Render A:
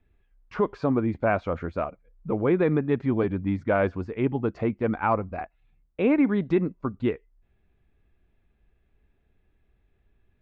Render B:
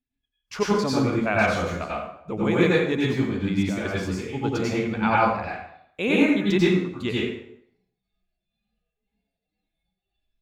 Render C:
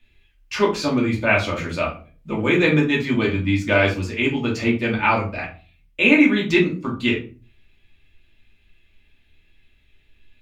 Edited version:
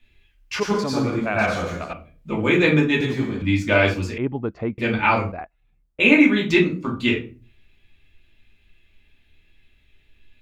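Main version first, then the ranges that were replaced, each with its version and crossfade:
C
0:00.60–0:01.93: punch in from B
0:03.01–0:03.42: punch in from B
0:04.18–0:04.78: punch in from A
0:05.32–0:06.00: punch in from A

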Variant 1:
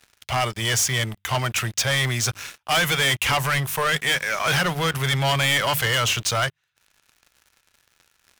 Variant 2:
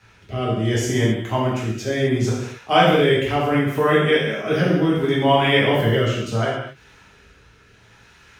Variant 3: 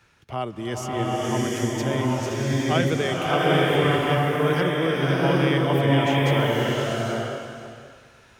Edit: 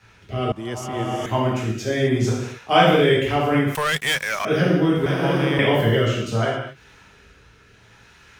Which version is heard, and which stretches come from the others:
2
0:00.52–0:01.26: punch in from 3
0:03.75–0:04.45: punch in from 1
0:05.06–0:05.59: punch in from 3

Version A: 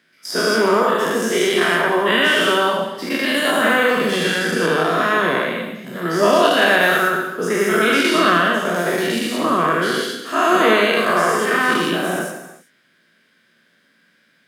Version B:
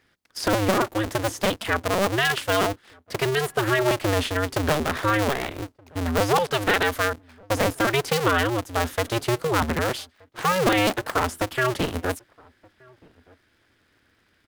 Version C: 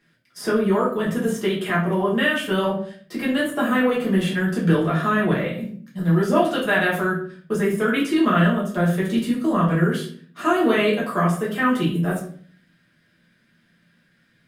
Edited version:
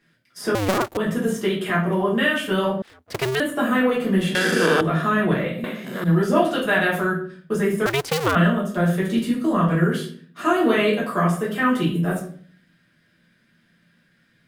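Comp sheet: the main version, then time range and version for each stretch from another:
C
0:00.55–0:00.97: punch in from B
0:02.82–0:03.40: punch in from B
0:04.35–0:04.81: punch in from A
0:05.64–0:06.04: punch in from A
0:07.86–0:08.35: punch in from B

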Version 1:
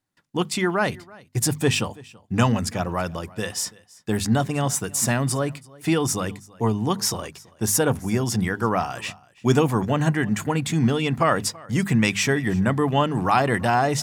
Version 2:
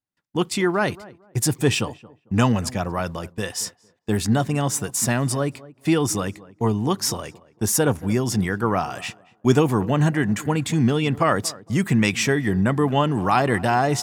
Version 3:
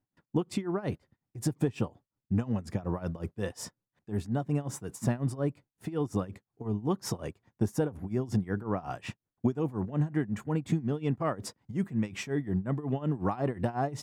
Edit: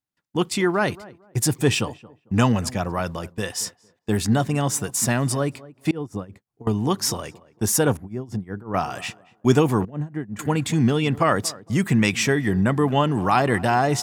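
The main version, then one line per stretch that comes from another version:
2
0:05.91–0:06.67: punch in from 3
0:07.97–0:08.74: punch in from 3
0:09.85–0:10.39: punch in from 3
not used: 1

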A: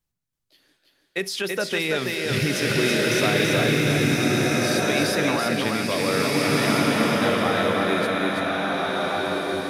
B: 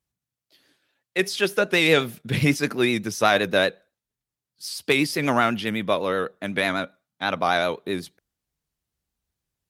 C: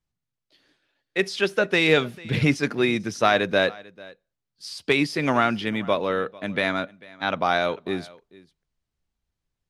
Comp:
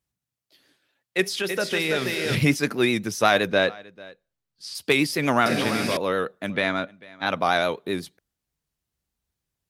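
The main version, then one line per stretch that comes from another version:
B
0:01.36–0:02.35: punch in from A
0:03.49–0:04.75: punch in from C
0:05.46–0:05.97: punch in from A
0:06.50–0:07.26: punch in from C

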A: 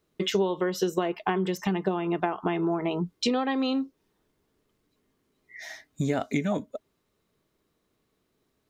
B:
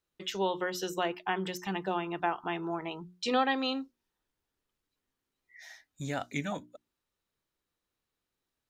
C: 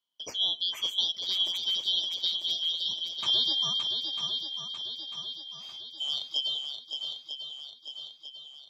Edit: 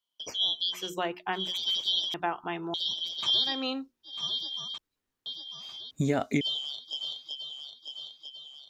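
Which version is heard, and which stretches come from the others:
C
0:00.83–0:01.44: punch in from B, crossfade 0.24 s
0:02.14–0:02.74: punch in from B
0:03.53–0:04.15: punch in from B, crossfade 0.24 s
0:04.78–0:05.26: punch in from B
0:05.91–0:06.41: punch in from A

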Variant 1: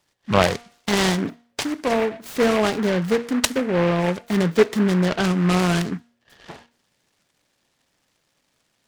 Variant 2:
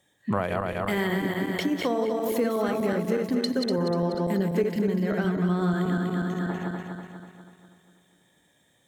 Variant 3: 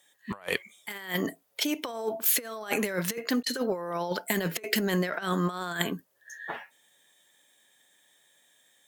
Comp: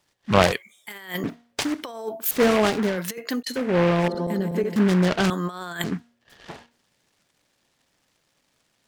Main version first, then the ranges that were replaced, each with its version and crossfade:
1
0:00.52–0:01.24: punch in from 3
0:01.83–0:02.31: punch in from 3
0:02.93–0:03.58: punch in from 3, crossfade 0.24 s
0:04.08–0:04.76: punch in from 2
0:05.30–0:05.84: punch in from 3

